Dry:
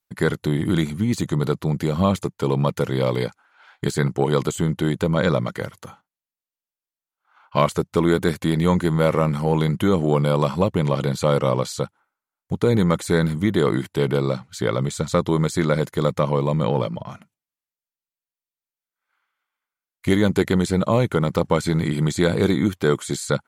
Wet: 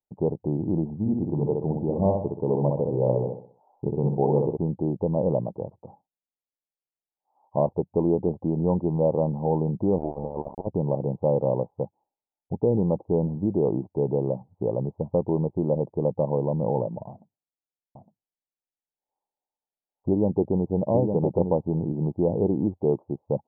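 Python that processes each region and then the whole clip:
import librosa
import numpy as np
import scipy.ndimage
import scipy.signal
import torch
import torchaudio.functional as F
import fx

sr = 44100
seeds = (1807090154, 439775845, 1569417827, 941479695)

y = fx.chain(x, sr, fx.echo_feedback(ms=63, feedback_pct=38, wet_db=-3.5),
    fx.doppler_dist(depth_ms=0.12), at=(0.99, 4.57))
y = fx.chain(y, sr, fx.tilt_eq(slope=3.0),
    fx.over_compress(threshold_db=-24.0, ratio=-0.5),
    fx.sample_gate(floor_db=-23.5), at=(9.98, 10.67))
y = fx.chain(y, sr, fx.gaussian_blur(sigma=1.5),
    fx.echo_single(ms=860, db=-5.0), at=(17.09, 21.54))
y = scipy.signal.sosfilt(scipy.signal.butter(12, 880.0, 'lowpass', fs=sr, output='sos'), y)
y = fx.low_shelf(y, sr, hz=400.0, db=-6.5)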